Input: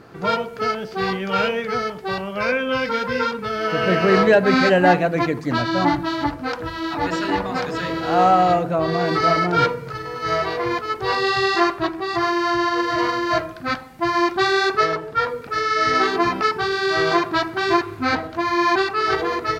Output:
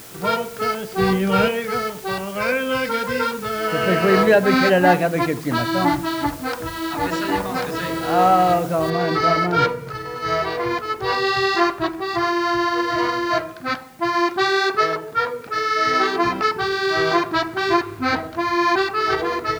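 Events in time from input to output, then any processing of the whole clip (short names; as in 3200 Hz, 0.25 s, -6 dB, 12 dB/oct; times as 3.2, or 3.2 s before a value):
0.98–1.48 low shelf 410 Hz +10 dB
8.9 noise floor step -41 dB -55 dB
13.3–16.24 low shelf 96 Hz -10.5 dB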